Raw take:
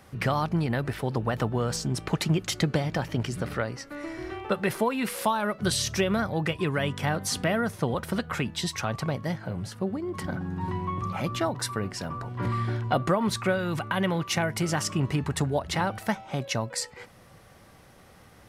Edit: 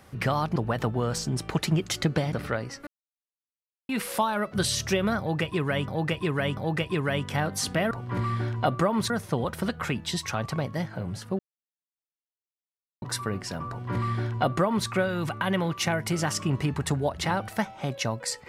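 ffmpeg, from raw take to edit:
-filter_complex "[0:a]asplit=11[s0][s1][s2][s3][s4][s5][s6][s7][s8][s9][s10];[s0]atrim=end=0.562[s11];[s1]atrim=start=1.138:end=2.912[s12];[s2]atrim=start=3.398:end=3.94,asetpts=PTS-STARTPTS,afade=t=out:st=0.538:d=0.004:c=hsin[s13];[s3]atrim=start=3.94:end=4.96,asetpts=PTS-STARTPTS,volume=0[s14];[s4]atrim=start=4.96:end=6.952,asetpts=PTS-STARTPTS,afade=t=in:d=0.004:c=hsin[s15];[s5]atrim=start=6.258:end=6.952[s16];[s6]atrim=start=6.258:end=7.602[s17];[s7]atrim=start=12.188:end=13.382[s18];[s8]atrim=start=7.598:end=9.89,asetpts=PTS-STARTPTS,afade=t=out:st=2.288:d=0.004:c=hsin[s19];[s9]atrim=start=9.89:end=11.52,asetpts=PTS-STARTPTS,volume=0[s20];[s10]atrim=start=11.52,asetpts=PTS-STARTPTS,afade=t=in:d=0.004:c=hsin[s21];[s11][s12]acrossfade=d=0.004:c1=hsin:c2=hsin[s22];[s13][s14][s15]concat=n=3:v=0:a=1[s23];[s22][s23]acrossfade=d=0.004:c1=hsin:c2=hsin[s24];[s24][s16]acrossfade=d=0.004:c1=hsin:c2=hsin[s25];[s25][s17]acrossfade=d=0.004:c1=hsin:c2=hsin[s26];[s26][s18]acrossfade=d=0.004:c1=hsin:c2=hsin[s27];[s19][s20][s21]concat=n=3:v=0:a=1[s28];[s27][s28]acrossfade=d=0.004:c1=hsin:c2=hsin"

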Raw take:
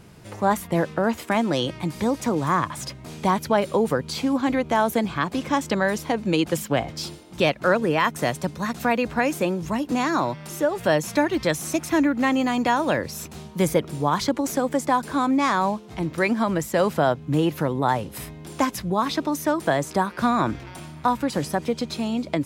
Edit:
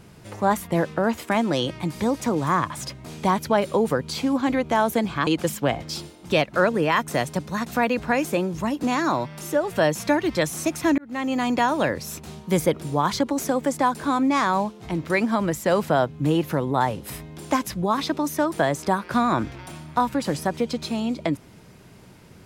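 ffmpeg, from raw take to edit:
-filter_complex "[0:a]asplit=3[s0][s1][s2];[s0]atrim=end=5.272[s3];[s1]atrim=start=6.348:end=12.06,asetpts=PTS-STARTPTS,afade=t=out:st=5.708:d=0.004:c=hsin[s4];[s2]atrim=start=12.06,asetpts=PTS-STARTPTS,afade=t=in:d=0.46[s5];[s4][s5]concat=n=2:v=0:a=1[s6];[s3][s6]acrossfade=d=0.004:c1=hsin:c2=hsin"

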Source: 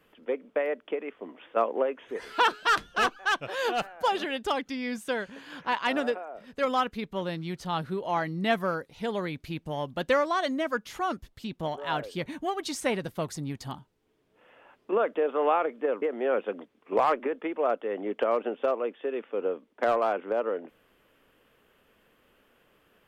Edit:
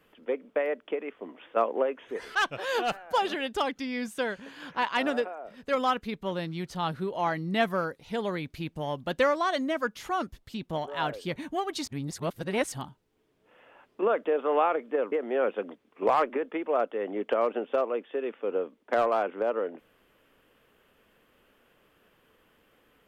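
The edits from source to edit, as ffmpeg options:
-filter_complex "[0:a]asplit=4[s0][s1][s2][s3];[s0]atrim=end=2.352[s4];[s1]atrim=start=3.248:end=12.762[s5];[s2]atrim=start=12.758:end=13.622,asetpts=PTS-STARTPTS,areverse[s6];[s3]atrim=start=13.618[s7];[s4][s5]acrossfade=d=0.004:c1=hsin:c2=hsin[s8];[s8][s6]acrossfade=d=0.004:c1=hsin:c2=hsin[s9];[s9][s7]acrossfade=d=0.004:c1=hsin:c2=hsin"

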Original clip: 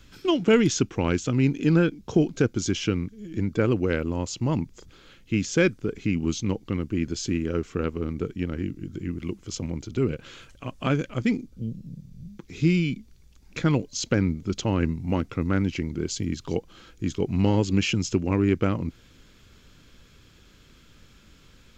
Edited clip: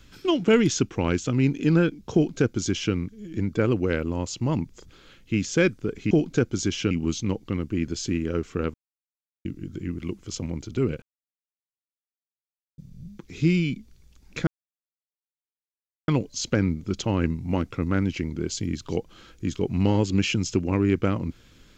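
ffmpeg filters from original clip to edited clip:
-filter_complex "[0:a]asplit=8[s0][s1][s2][s3][s4][s5][s6][s7];[s0]atrim=end=6.112[s8];[s1]atrim=start=2.138:end=2.942[s9];[s2]atrim=start=6.108:end=7.94,asetpts=PTS-STARTPTS,afade=t=out:st=1.828:d=0.004:c=hsin[s10];[s3]atrim=start=7.94:end=8.65,asetpts=PTS-STARTPTS,volume=0[s11];[s4]atrim=start=8.65:end=10.22,asetpts=PTS-STARTPTS,afade=t=in:d=0.004:c=hsin,afade=t=out:st=1.566:d=0.004:c=hsin[s12];[s5]atrim=start=10.22:end=11.98,asetpts=PTS-STARTPTS,volume=0[s13];[s6]atrim=start=11.98:end=13.67,asetpts=PTS-STARTPTS,afade=t=in:d=0.004:c=hsin,afade=t=out:st=1.686:d=0.004:c=hsin,apad=pad_dur=1.61[s14];[s7]atrim=start=13.67,asetpts=PTS-STARTPTS,afade=t=in:d=0.004:c=hsin[s15];[s8][s9]acrossfade=d=0.004:c1=hsin:c2=hsin[s16];[s10][s11][s12][s13][s14][s15]concat=n=6:v=0:a=1[s17];[s16][s17]acrossfade=d=0.004:c1=hsin:c2=hsin"

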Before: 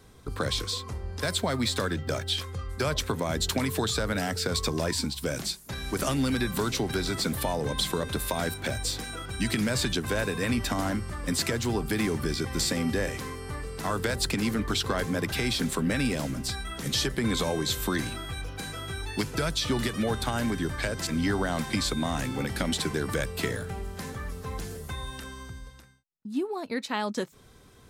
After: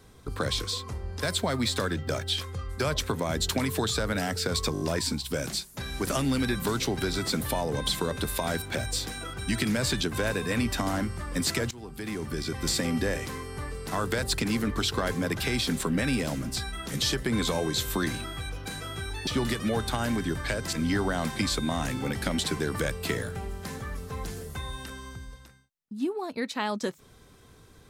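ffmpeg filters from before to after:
-filter_complex "[0:a]asplit=7[s0][s1][s2][s3][s4][s5][s6];[s0]atrim=end=4.752[s7];[s1]atrim=start=4.728:end=4.752[s8];[s2]atrim=start=4.728:end=4.752[s9];[s3]atrim=start=4.728:end=4.752[s10];[s4]atrim=start=4.728:end=11.63,asetpts=PTS-STARTPTS,afade=t=out:st=6.898:d=0.004:c=hsin:silence=0.0944061[s11];[s5]atrim=start=11.63:end=19.192,asetpts=PTS-STARTPTS,afade=t=in:d=1.01:silence=0.0944061[s12];[s6]atrim=start=19.608[s13];[s7][s8]acrossfade=d=0.004:c1=hsin:c2=hsin[s14];[s14][s9]acrossfade=d=0.004:c1=hsin:c2=hsin[s15];[s15][s10]acrossfade=d=0.004:c1=hsin:c2=hsin[s16];[s11][s12]concat=n=2:v=0:a=1[s17];[s16][s17]acrossfade=d=0.004:c1=hsin:c2=hsin[s18];[s18][s13]acrossfade=d=0.004:c1=hsin:c2=hsin"

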